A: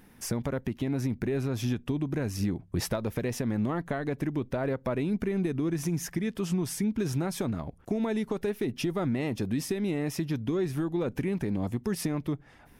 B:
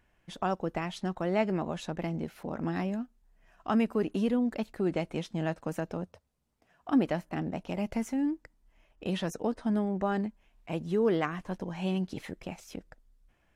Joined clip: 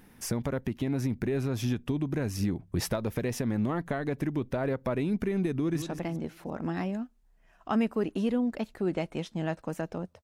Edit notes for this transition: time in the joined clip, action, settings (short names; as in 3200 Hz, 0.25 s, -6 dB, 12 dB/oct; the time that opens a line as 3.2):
A
5.57–5.82 echo throw 0.17 s, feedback 45%, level -10 dB
5.82 switch to B from 1.81 s